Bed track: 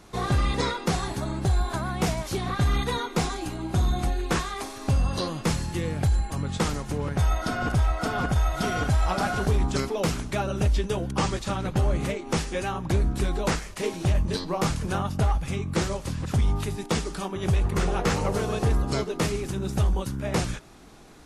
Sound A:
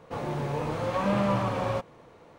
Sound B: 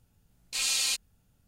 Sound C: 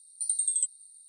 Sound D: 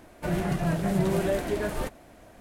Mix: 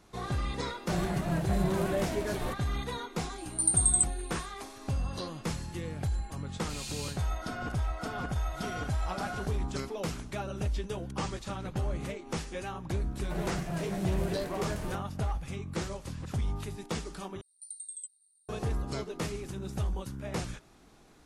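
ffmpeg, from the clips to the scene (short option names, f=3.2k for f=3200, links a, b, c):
-filter_complex "[4:a]asplit=2[a][b];[3:a]asplit=2[c][d];[0:a]volume=-9dB[e];[c]highshelf=f=6.8k:g=10[f];[2:a]aecho=1:1:30|64.5|104.2|149.8|202.3|262.6:0.631|0.398|0.251|0.158|0.1|0.0631[g];[e]asplit=2[h][i];[h]atrim=end=17.414[j];[d]atrim=end=1.08,asetpts=PTS-STARTPTS,volume=-15dB[k];[i]atrim=start=18.486[l];[a]atrim=end=2.4,asetpts=PTS-STARTPTS,volume=-4.5dB,afade=t=in:d=0.004:c=hsin,afade=t=out:st=2.396:d=0.004:c=hsin,adelay=650[m];[f]atrim=end=1.08,asetpts=PTS-STARTPTS,volume=-3.5dB,afade=t=in:d=0.004:c=hsin,afade=t=out:st=1.076:d=0.004:c=hsin,adelay=3380[n];[g]atrim=end=1.47,asetpts=PTS-STARTPTS,volume=-15.5dB,afade=t=in:d=0.004:c=hsin,afade=t=out:st=1.466:d=0.004:c=hsin,adelay=6150[o];[b]atrim=end=2.4,asetpts=PTS-STARTPTS,volume=-8dB,afade=t=in:d=0.1,afade=t=out:st=2.3:d=0.1,adelay=13070[p];[j][k]acrossfade=d=0.004:c1=hsin:c2=hsin[q];[q][l]acrossfade=d=0.004:c1=hsin:c2=hsin[r];[r][m][n][o][p]amix=inputs=5:normalize=0"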